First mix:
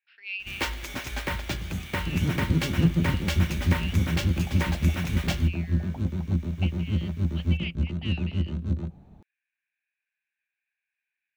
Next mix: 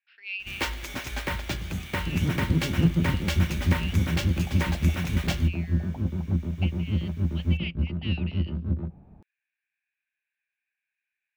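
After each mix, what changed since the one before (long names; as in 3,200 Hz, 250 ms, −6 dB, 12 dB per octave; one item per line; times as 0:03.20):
second sound: add low-pass filter 1,600 Hz 12 dB per octave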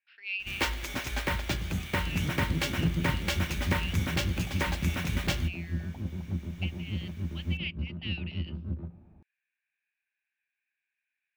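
second sound −8.5 dB
reverb: on, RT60 2.0 s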